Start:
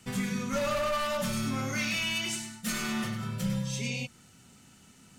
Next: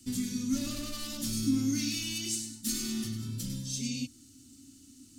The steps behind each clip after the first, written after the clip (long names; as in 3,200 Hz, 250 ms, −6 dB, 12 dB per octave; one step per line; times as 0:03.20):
drawn EQ curve 110 Hz 0 dB, 180 Hz −15 dB, 280 Hz +14 dB, 430 Hz −14 dB, 610 Hz −20 dB, 1,000 Hz −20 dB, 2,300 Hz −13 dB, 4,500 Hz +3 dB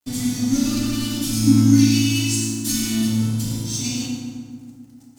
dead-zone distortion −48.5 dBFS
feedback delay network reverb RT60 2 s, low-frequency decay 1.4×, high-frequency decay 0.55×, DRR −4 dB
level +7 dB